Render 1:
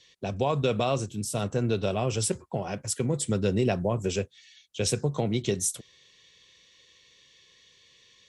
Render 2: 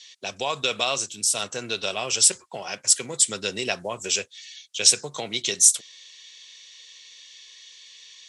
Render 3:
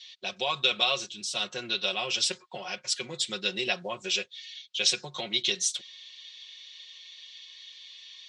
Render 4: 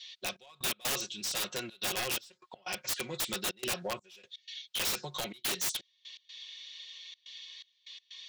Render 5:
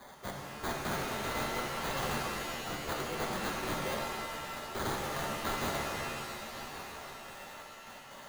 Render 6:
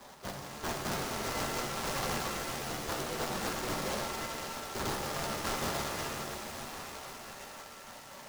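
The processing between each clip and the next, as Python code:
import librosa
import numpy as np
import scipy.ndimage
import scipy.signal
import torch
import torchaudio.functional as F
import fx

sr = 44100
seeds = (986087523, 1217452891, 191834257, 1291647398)

y1 = fx.weighting(x, sr, curve='ITU-R 468')
y1 = y1 * 10.0 ** (2.0 / 20.0)
y2 = fx.lowpass_res(y1, sr, hz=3800.0, q=2.0)
y2 = y2 + 0.84 * np.pad(y2, (int(5.5 * sr / 1000.0), 0))[:len(y2)]
y2 = y2 * 10.0 ** (-7.0 / 20.0)
y3 = 10.0 ** (-24.5 / 20.0) * np.tanh(y2 / 10.0 ** (-24.5 / 20.0))
y3 = fx.step_gate(y3, sr, bpm=124, pattern='xxx..x.xxxxxxx.', floor_db=-24.0, edge_ms=4.5)
y3 = (np.mod(10.0 ** (27.0 / 20.0) * y3 + 1.0, 2.0) - 1.0) / 10.0 ** (27.0 / 20.0)
y4 = fx.sample_hold(y3, sr, seeds[0], rate_hz=2700.0, jitter_pct=0)
y4 = y4 + 10.0 ** (-14.0 / 20.0) * np.pad(y4, (int(1115 * sr / 1000.0), 0))[:len(y4)]
y4 = fx.rev_shimmer(y4, sr, seeds[1], rt60_s=2.1, semitones=7, shimmer_db=-2, drr_db=-0.5)
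y4 = y4 * 10.0 ** (-5.0 / 20.0)
y5 = y4 + 10.0 ** (-10.0 / 20.0) * np.pad(y4, (int(523 * sr / 1000.0), 0))[:len(y4)]
y5 = fx.noise_mod_delay(y5, sr, seeds[2], noise_hz=3700.0, depth_ms=0.074)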